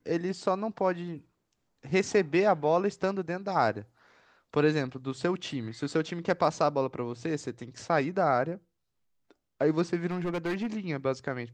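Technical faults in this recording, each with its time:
10.10–10.67 s: clipped -27 dBFS

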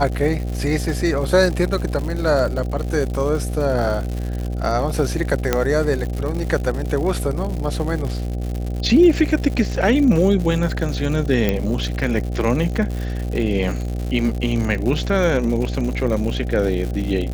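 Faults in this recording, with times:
buzz 60 Hz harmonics 13 -24 dBFS
crackle 160 per s -26 dBFS
5.53 s: pop -3 dBFS
9.76 s: dropout 3.4 ms
11.49 s: pop -6 dBFS

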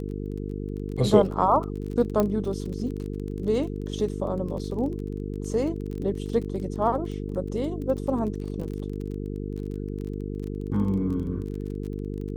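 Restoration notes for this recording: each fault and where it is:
buzz 50 Hz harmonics 9 -32 dBFS
crackle 28 per s -33 dBFS
2.20 s: pop -11 dBFS

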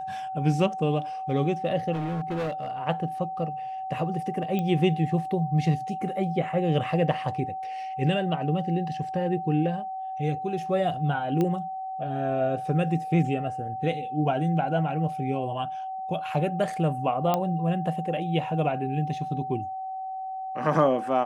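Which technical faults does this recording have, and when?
whine 760 Hz -31 dBFS
1.92–2.71 s: clipped -26 dBFS
4.59 s: pop -17 dBFS
11.41 s: pop -15 dBFS
17.34 s: pop -11 dBFS

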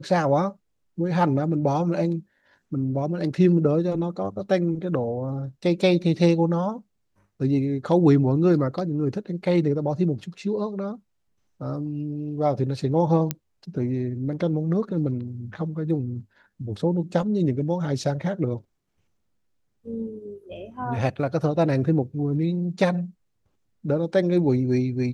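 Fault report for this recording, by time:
13.31 s: pop -9 dBFS

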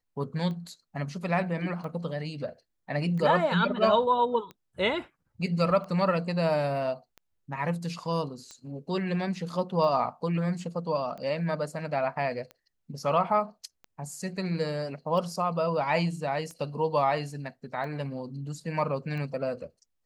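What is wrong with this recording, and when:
tick 45 rpm -29 dBFS

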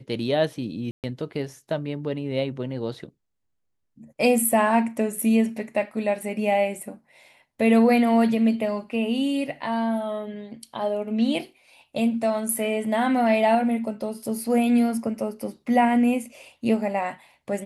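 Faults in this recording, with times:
0.91–1.04 s: dropout 128 ms

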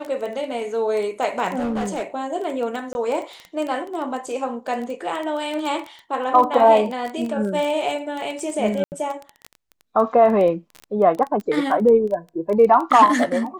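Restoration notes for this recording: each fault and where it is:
crackle 13 per s -24 dBFS
1.58–2.03 s: clipped -20.5 dBFS
2.93–2.95 s: dropout 21 ms
8.84–8.92 s: dropout 79 ms

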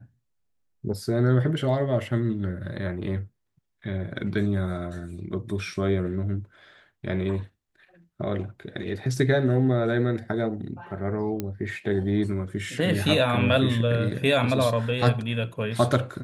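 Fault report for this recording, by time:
11.40 s: pop -15 dBFS

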